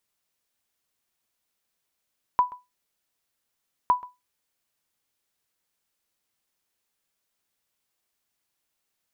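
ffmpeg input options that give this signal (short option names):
-f lavfi -i "aevalsrc='0.266*(sin(2*PI*991*mod(t,1.51))*exp(-6.91*mod(t,1.51)/0.21)+0.0891*sin(2*PI*991*max(mod(t,1.51)-0.13,0))*exp(-6.91*max(mod(t,1.51)-0.13,0)/0.21))':d=3.02:s=44100"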